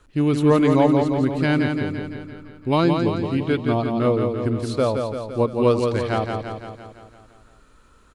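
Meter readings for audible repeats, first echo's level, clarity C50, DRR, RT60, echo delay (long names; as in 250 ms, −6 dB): 7, −5.0 dB, no reverb audible, no reverb audible, no reverb audible, 170 ms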